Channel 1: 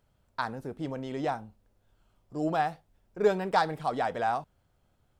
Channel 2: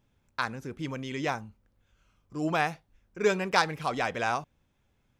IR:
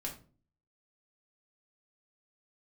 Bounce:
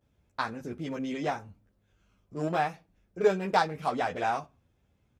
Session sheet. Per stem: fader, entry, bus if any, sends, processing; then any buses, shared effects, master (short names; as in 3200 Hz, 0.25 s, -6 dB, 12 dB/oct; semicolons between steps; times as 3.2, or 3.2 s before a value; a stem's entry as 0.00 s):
+0.5 dB, 0.00 s, no send, Wiener smoothing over 41 samples
-1.0 dB, 11 ms, send -13 dB, compressor, threshold -29 dBFS, peak gain reduction 11 dB; ensemble effect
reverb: on, RT60 0.40 s, pre-delay 4 ms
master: HPF 40 Hz